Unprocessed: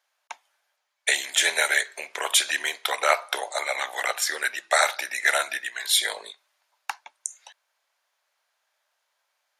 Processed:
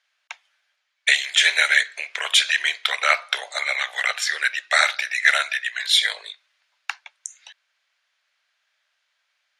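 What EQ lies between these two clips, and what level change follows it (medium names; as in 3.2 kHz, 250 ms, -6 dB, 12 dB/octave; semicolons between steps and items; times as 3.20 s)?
band-pass 580–2900 Hz; tilt EQ +4 dB/octave; peaking EQ 910 Hz -9 dB 0.84 oct; +4.0 dB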